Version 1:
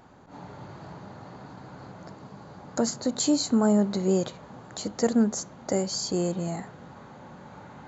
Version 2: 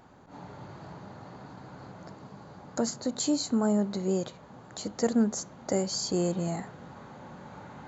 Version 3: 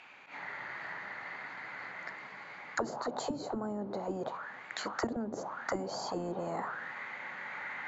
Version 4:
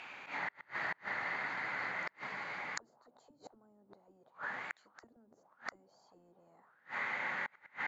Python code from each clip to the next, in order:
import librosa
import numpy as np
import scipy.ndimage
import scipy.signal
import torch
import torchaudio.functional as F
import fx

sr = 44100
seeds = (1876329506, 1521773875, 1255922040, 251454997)

y1 = fx.rider(x, sr, range_db=10, speed_s=2.0)
y1 = y1 * librosa.db_to_amplitude(-3.0)
y2 = fx.auto_wah(y1, sr, base_hz=240.0, top_hz=2600.0, q=7.4, full_db=-22.5, direction='down')
y2 = fx.spectral_comp(y2, sr, ratio=4.0)
y3 = fx.gate_flip(y2, sr, shuts_db=-31.0, range_db=-34)
y3 = y3 * librosa.db_to_amplitude(5.0)